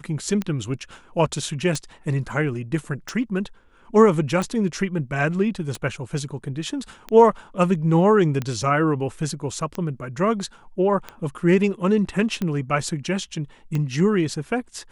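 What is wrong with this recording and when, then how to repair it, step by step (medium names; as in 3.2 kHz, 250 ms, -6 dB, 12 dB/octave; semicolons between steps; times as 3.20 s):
tick 45 rpm -14 dBFS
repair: de-click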